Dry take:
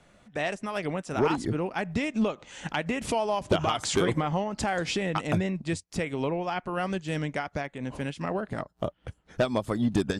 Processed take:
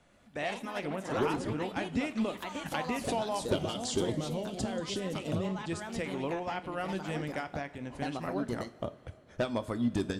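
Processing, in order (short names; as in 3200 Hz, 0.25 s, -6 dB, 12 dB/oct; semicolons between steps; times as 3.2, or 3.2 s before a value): spectral gain 3.55–5.71, 650–2700 Hz -10 dB; echoes that change speed 0.118 s, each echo +3 st, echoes 2, each echo -6 dB; two-slope reverb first 0.32 s, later 3.8 s, from -18 dB, DRR 11 dB; gain -6 dB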